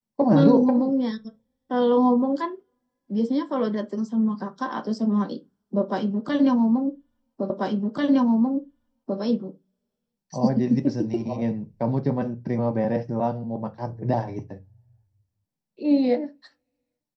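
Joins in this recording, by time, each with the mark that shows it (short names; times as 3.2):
7.5 repeat of the last 1.69 s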